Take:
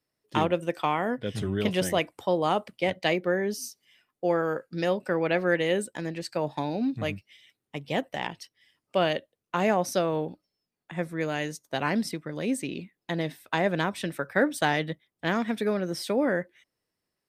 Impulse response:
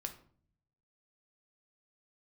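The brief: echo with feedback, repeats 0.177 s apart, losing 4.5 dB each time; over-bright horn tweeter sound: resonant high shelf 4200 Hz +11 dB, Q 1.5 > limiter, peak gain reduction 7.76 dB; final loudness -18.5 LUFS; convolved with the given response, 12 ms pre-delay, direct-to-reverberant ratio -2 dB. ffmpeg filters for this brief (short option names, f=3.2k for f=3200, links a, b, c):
-filter_complex "[0:a]aecho=1:1:177|354|531|708|885|1062|1239|1416|1593:0.596|0.357|0.214|0.129|0.0772|0.0463|0.0278|0.0167|0.01,asplit=2[a][b];[1:a]atrim=start_sample=2205,adelay=12[c];[b][c]afir=irnorm=-1:irlink=0,volume=4dB[d];[a][d]amix=inputs=2:normalize=0,highshelf=f=4.2k:t=q:w=1.5:g=11,volume=5dB,alimiter=limit=-7.5dB:level=0:latency=1"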